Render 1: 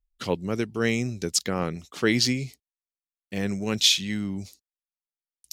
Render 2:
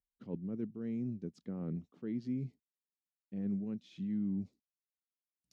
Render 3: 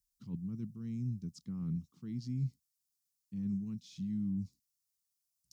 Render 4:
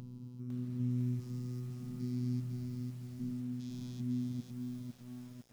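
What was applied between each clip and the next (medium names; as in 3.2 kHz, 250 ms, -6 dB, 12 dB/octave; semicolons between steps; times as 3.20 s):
reverse; compression 6:1, threshold -30 dBFS, peak gain reduction 15 dB; reverse; band-pass filter 210 Hz, Q 1.8
FFT filter 140 Hz 0 dB, 590 Hz -29 dB, 1.1 kHz -9 dB, 1.6 kHz -17 dB, 3.3 kHz -7 dB, 5.2 kHz +5 dB; trim +7 dB
spectrogram pixelated in time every 400 ms; robot voice 124 Hz; bit-crushed delay 503 ms, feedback 55%, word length 11-bit, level -4.5 dB; trim +6.5 dB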